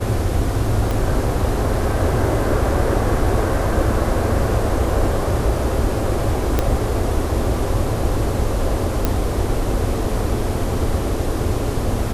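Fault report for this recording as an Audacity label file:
0.910000	0.910000	pop
6.590000	6.590000	pop -4 dBFS
9.050000	9.050000	pop

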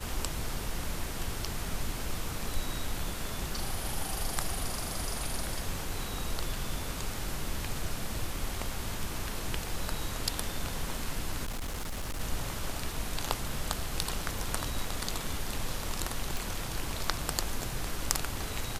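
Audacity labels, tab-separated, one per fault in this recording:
11.440000	12.210000	clipped -31.5 dBFS
16.370000	16.370000	pop

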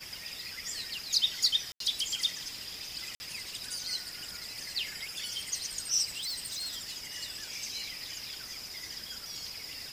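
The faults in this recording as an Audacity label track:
1.720000	1.800000	dropout 83 ms
3.150000	3.200000	dropout 50 ms
6.170000	6.930000	clipped -32.5 dBFS

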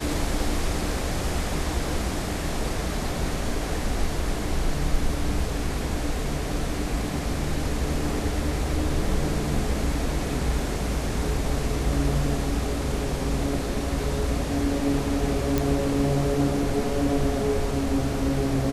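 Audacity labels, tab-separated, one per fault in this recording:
15.580000	15.580000	pop

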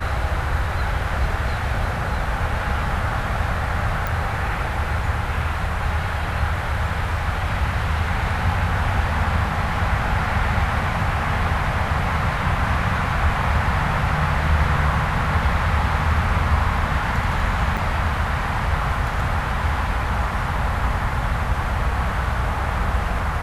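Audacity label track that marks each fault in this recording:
4.070000	4.070000	pop
17.770000	17.780000	dropout 5.2 ms

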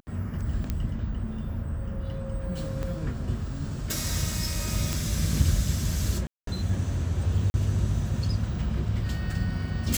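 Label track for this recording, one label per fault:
0.700000	0.700000	pop -15 dBFS
2.830000	2.830000	pop -20 dBFS
4.930000	4.930000	pop
6.270000	6.470000	dropout 203 ms
7.500000	7.540000	dropout 40 ms

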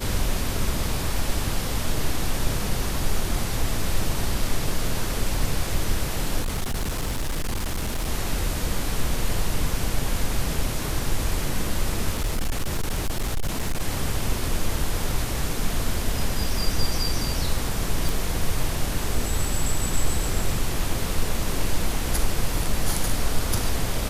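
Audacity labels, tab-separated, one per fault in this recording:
6.410000	8.090000	clipped -22 dBFS
12.120000	13.810000	clipped -20 dBFS
18.090000	18.090000	pop

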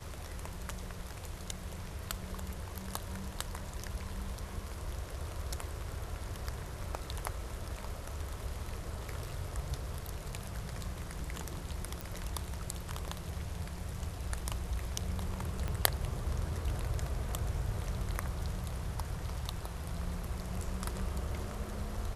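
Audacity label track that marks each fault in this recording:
12.010000	12.010000	pop
15.680000	15.680000	pop -23 dBFS

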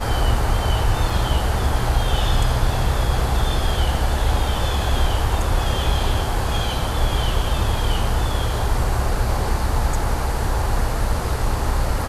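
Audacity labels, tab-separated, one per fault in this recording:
1.100000	1.100000	dropout 3.1 ms

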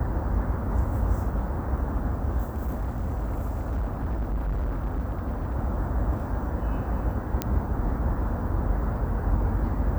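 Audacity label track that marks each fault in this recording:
2.460000	5.560000	clipped -24 dBFS
7.420000	7.420000	pop -9 dBFS

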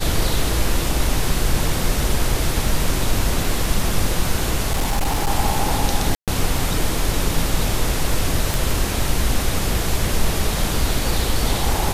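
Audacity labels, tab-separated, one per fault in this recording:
4.710000	5.300000	clipped -14.5 dBFS
6.150000	6.280000	dropout 127 ms
8.540000	8.540000	pop

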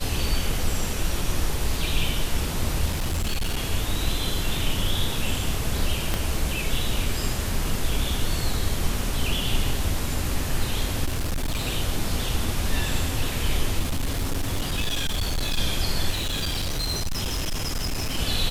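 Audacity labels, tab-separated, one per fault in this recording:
2.890000	3.570000	clipped -21 dBFS
6.140000	6.140000	pop -10 dBFS
11.050000	11.670000	clipped -22 dBFS
13.790000	15.590000	clipped -21 dBFS
16.100000	18.190000	clipped -23 dBFS

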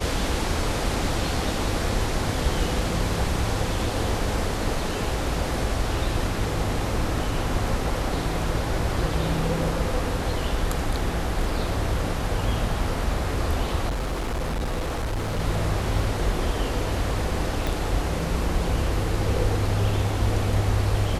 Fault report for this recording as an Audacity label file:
13.880000	15.400000	clipped -23.5 dBFS
17.670000	17.670000	pop

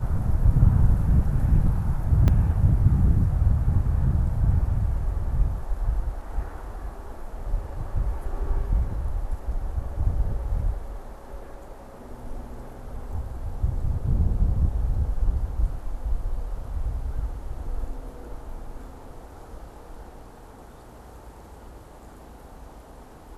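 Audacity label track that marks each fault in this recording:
2.280000	2.280000	dropout 3.1 ms

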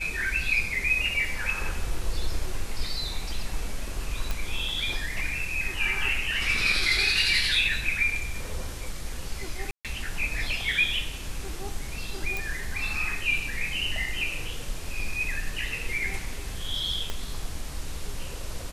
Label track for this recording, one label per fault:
1.500000	1.500000	dropout 2.1 ms
4.310000	4.310000	pop
9.710000	9.850000	dropout 137 ms
12.370000	12.370000	pop
17.100000	17.100000	pop -16 dBFS

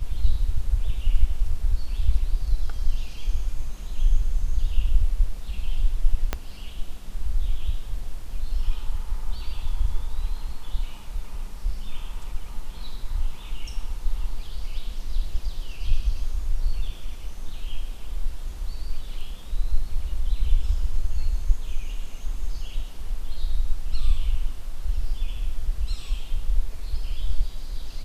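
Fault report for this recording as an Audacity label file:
6.330000	6.330000	pop -10 dBFS

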